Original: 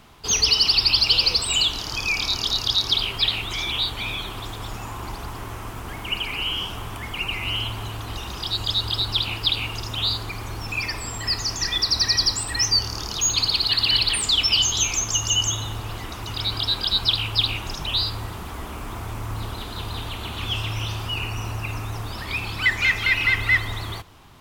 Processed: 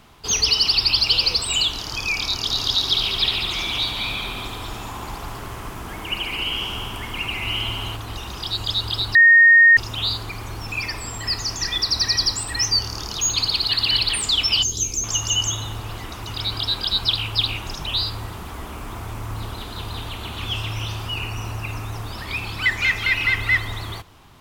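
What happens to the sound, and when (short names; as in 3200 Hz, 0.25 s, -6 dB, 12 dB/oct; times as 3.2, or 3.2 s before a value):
2.36–7.96 multi-head echo 71 ms, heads all three, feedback 56%, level -11 dB
9.15–9.77 bleep 1850 Hz -7.5 dBFS
14.63–15.04 band shelf 1600 Hz -15 dB 2.8 oct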